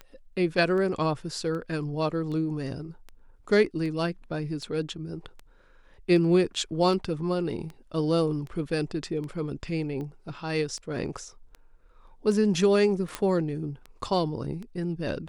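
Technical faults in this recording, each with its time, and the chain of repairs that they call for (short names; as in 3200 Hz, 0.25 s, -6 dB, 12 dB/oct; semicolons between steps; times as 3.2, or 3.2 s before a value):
tick 78 rpm -27 dBFS
13.15 pop -14 dBFS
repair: de-click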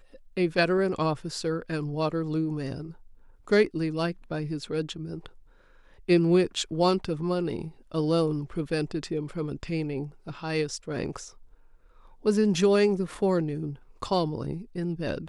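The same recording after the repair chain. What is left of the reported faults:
none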